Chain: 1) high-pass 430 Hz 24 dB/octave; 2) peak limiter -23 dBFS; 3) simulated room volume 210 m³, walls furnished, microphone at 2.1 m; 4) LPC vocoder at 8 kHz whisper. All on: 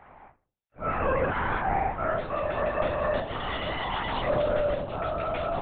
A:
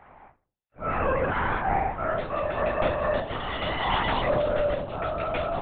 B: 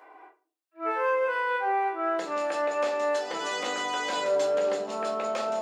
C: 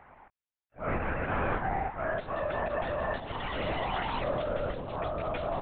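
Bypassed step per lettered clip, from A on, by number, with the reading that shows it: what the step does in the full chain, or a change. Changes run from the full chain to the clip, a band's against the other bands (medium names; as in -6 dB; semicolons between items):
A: 2, loudness change +1.5 LU; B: 4, 250 Hz band -4.0 dB; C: 3, loudness change -4.5 LU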